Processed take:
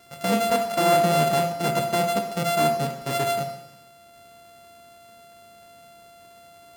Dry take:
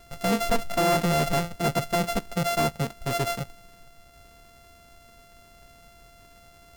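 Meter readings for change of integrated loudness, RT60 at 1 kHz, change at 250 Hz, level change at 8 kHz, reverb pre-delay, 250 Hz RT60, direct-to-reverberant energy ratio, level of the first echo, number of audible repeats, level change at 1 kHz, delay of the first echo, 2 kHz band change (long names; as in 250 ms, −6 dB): +3.0 dB, 0.90 s, +0.5 dB, +2.0 dB, 18 ms, 0.90 s, 4.0 dB, no echo audible, no echo audible, +4.5 dB, no echo audible, +1.0 dB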